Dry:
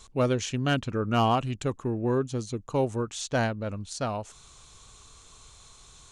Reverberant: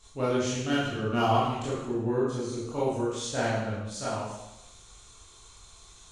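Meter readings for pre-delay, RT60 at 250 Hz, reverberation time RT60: 18 ms, 0.90 s, 0.90 s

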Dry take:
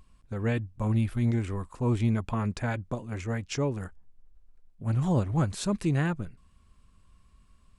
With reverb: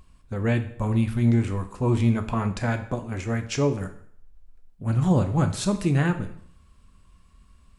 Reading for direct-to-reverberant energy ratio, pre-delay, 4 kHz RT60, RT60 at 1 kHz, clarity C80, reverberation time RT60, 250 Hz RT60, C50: 6.5 dB, 4 ms, 0.55 s, 0.60 s, 15.5 dB, 0.60 s, 0.60 s, 12.0 dB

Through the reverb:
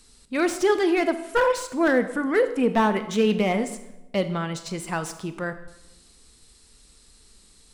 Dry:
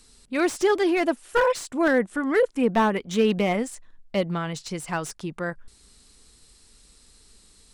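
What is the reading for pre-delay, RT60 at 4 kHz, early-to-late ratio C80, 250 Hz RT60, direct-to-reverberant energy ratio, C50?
22 ms, 0.70 s, 14.0 dB, 1.1 s, 10.0 dB, 12.0 dB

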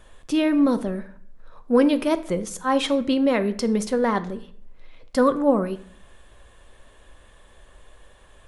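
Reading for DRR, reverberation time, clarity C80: 10.0 dB, 0.60 s, 19.0 dB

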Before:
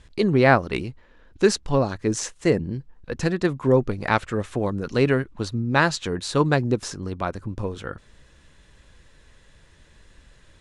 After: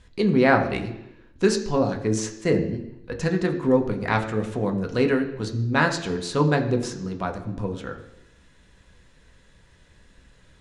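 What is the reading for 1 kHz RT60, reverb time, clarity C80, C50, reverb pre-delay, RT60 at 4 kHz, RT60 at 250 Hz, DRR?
0.85 s, 0.85 s, 12.0 dB, 10.0 dB, 3 ms, 0.85 s, 0.90 s, 3.5 dB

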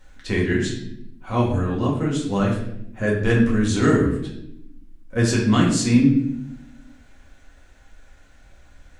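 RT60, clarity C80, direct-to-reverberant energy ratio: 0.80 s, 8.0 dB, -4.0 dB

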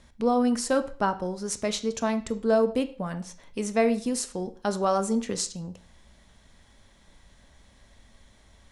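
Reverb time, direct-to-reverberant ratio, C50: 0.45 s, 10.5 dB, 14.5 dB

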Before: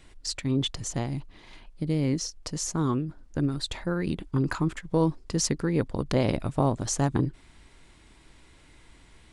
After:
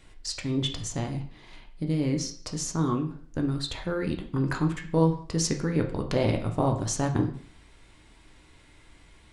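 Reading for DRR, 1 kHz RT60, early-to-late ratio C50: 3.0 dB, 0.50 s, 10.0 dB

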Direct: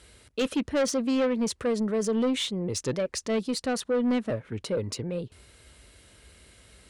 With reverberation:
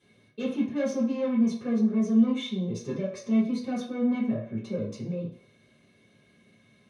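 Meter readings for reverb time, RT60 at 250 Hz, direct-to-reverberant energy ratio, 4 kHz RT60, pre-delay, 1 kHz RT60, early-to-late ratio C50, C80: 0.60 s, 0.40 s, -13.0 dB, 0.60 s, 3 ms, 0.65 s, 6.0 dB, 9.5 dB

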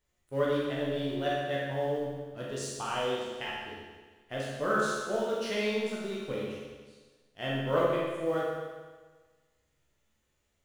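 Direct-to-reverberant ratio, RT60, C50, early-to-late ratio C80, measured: -6.0 dB, 1.4 s, -1.5 dB, 1.0 dB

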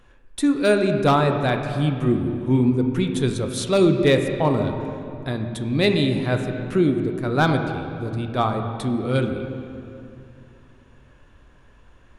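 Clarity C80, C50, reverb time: 7.0 dB, 6.0 dB, 2.6 s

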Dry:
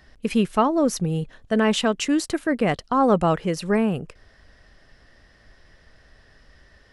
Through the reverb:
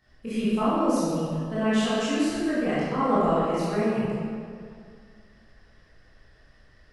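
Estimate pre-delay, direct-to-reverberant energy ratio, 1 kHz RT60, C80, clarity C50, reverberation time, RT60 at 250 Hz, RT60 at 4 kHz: 17 ms, -11.5 dB, 2.2 s, -1.5 dB, -4.5 dB, 2.2 s, 2.2 s, 1.4 s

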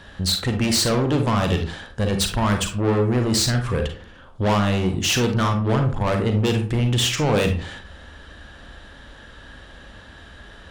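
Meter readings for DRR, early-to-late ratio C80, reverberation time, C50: 4.5 dB, 13.5 dB, 0.45 s, 6.5 dB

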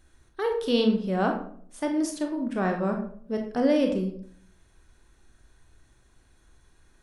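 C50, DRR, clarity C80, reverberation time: 6.5 dB, 3.0 dB, 10.5 dB, 0.55 s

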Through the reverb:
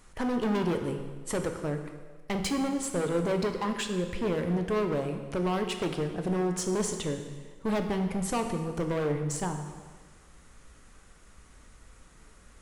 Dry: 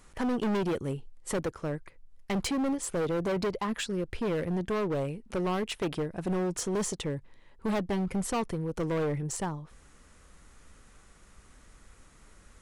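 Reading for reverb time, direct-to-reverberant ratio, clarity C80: 1.5 s, 5.0 dB, 8.5 dB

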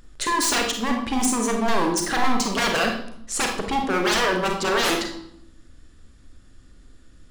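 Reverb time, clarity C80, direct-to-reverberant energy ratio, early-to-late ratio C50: 0.75 s, 9.0 dB, 2.0 dB, 5.0 dB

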